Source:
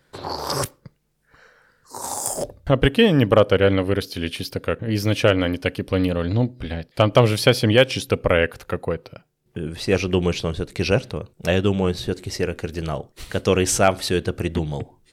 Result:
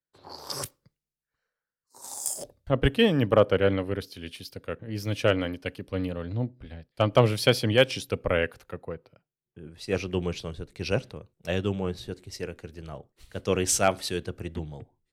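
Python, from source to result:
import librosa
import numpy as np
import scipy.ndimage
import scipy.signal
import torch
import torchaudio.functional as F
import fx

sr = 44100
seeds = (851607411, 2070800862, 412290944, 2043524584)

y = fx.band_widen(x, sr, depth_pct=70)
y = y * 10.0 ** (-8.5 / 20.0)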